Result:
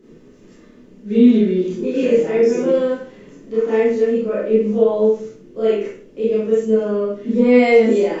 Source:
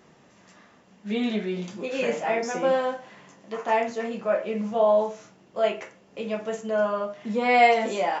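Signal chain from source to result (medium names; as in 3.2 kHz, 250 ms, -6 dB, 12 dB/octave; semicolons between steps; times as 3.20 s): resonant low shelf 550 Hz +10.5 dB, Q 3; added noise brown -57 dBFS; Schroeder reverb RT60 0.41 s, combs from 25 ms, DRR -7.5 dB; trim -8 dB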